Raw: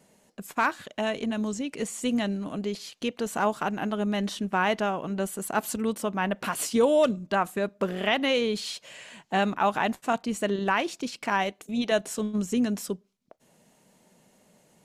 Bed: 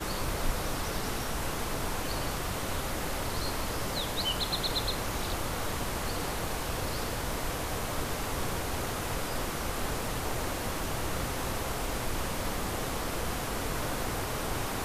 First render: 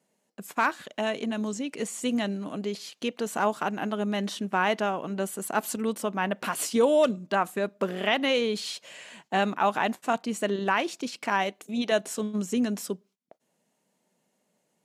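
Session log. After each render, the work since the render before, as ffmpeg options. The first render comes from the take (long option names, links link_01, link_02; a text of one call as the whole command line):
ffmpeg -i in.wav -af "highpass=170,agate=range=-12dB:threshold=-56dB:ratio=16:detection=peak" out.wav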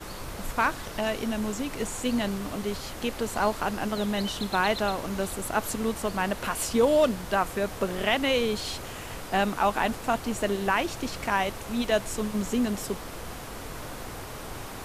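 ffmpeg -i in.wav -i bed.wav -filter_complex "[1:a]volume=-5.5dB[link_01];[0:a][link_01]amix=inputs=2:normalize=0" out.wav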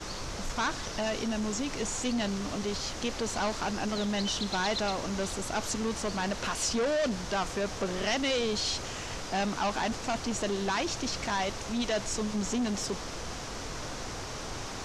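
ffmpeg -i in.wav -af "asoftclip=type=tanh:threshold=-25.5dB,lowpass=frequency=6000:width_type=q:width=2.6" out.wav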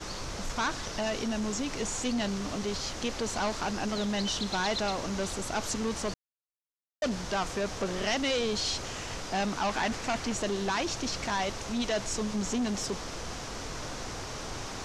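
ffmpeg -i in.wav -filter_complex "[0:a]asettb=1/sr,asplit=3[link_01][link_02][link_03];[link_01]atrim=end=9.694[link_04];[link_02]atrim=start=9.69:end=10.34,asetpts=PTS-STARTPTS,afade=type=in:duration=0.004:curve=qsin,afade=type=out:start_time=0.646:duration=0.004:curve=qsin,equalizer=frequency=2000:width=1.5:gain=4.5[link_05];[link_03]atrim=start=10.336[link_06];[link_04][link_05]acrossfade=duration=0.004:curve1=hsin:curve2=qsin[link_07];[link_07][link_06]acrossfade=duration=0.004:curve1=qsin:curve2=hsin,asplit=3[link_08][link_09][link_10];[link_08]atrim=end=6.14,asetpts=PTS-STARTPTS,afade=type=out:start_time=6.136:duration=0.004:curve=hsin[link_11];[link_09]atrim=start=6.14:end=7.02,asetpts=PTS-STARTPTS,volume=0[link_12];[link_10]atrim=start=7.02,asetpts=PTS-STARTPTS,afade=type=in:duration=0.004:curve=hsin[link_13];[link_11][link_12][link_13]concat=n=3:v=0:a=1" out.wav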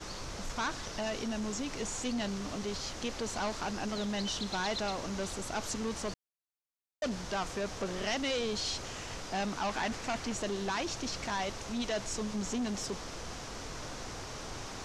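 ffmpeg -i in.wav -af "volume=-4dB" out.wav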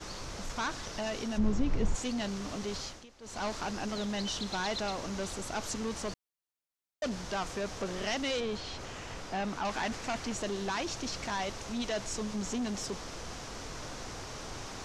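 ffmpeg -i in.wav -filter_complex "[0:a]asplit=3[link_01][link_02][link_03];[link_01]afade=type=out:start_time=1.37:duration=0.02[link_04];[link_02]aemphasis=mode=reproduction:type=riaa,afade=type=in:start_time=1.37:duration=0.02,afade=type=out:start_time=1.94:duration=0.02[link_05];[link_03]afade=type=in:start_time=1.94:duration=0.02[link_06];[link_04][link_05][link_06]amix=inputs=3:normalize=0,asettb=1/sr,asplit=3[link_07][link_08][link_09];[link_07]atrim=end=8.404[link_10];[link_08]atrim=start=8.4:end=9.65,asetpts=PTS-STARTPTS,afade=type=in:duration=0.004:curve=qsin,afade=type=out:start_time=1.246:duration=0.004:curve=qsin,acrossover=split=3100[link_11][link_12];[link_12]acompressor=threshold=-49dB:ratio=4:attack=1:release=60[link_13];[link_11][link_13]amix=inputs=2:normalize=0[link_14];[link_09]atrim=start=9.646[link_15];[link_10][link_14]acrossfade=duration=0.004:curve1=hsin:curve2=qsin[link_16];[link_16][link_15]acrossfade=duration=0.004:curve1=qsin:curve2=hsin,asplit=3[link_17][link_18][link_19];[link_17]atrim=end=3.06,asetpts=PTS-STARTPTS,afade=type=out:start_time=2.8:duration=0.26:silence=0.112202[link_20];[link_18]atrim=start=3.06:end=3.2,asetpts=PTS-STARTPTS,volume=-19dB[link_21];[link_19]atrim=start=3.2,asetpts=PTS-STARTPTS,afade=type=in:duration=0.26:silence=0.112202[link_22];[link_20][link_21][link_22]concat=n=3:v=0:a=1" out.wav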